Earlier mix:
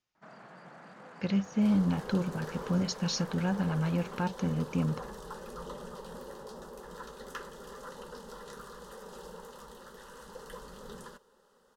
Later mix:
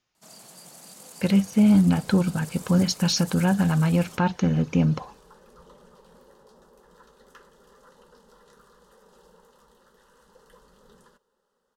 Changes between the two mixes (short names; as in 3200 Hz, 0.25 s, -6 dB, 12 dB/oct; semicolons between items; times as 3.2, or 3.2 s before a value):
speech +9.0 dB; first sound: remove synth low-pass 1600 Hz, resonance Q 2.3; second sound -9.5 dB